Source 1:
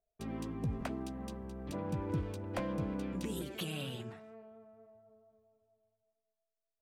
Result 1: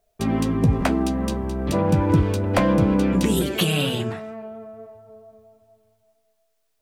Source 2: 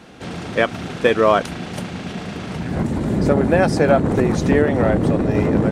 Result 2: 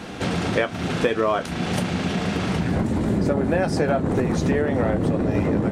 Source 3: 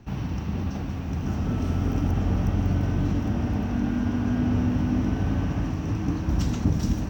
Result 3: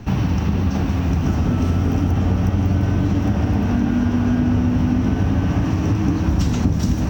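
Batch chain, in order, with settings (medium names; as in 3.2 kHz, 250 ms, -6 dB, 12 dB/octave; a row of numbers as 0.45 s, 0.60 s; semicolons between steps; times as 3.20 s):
flange 0.34 Hz, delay 9.8 ms, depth 2.7 ms, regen -56%; compression 4:1, threshold -33 dBFS; peak normalisation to -6 dBFS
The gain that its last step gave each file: +22.5 dB, +12.5 dB, +17.5 dB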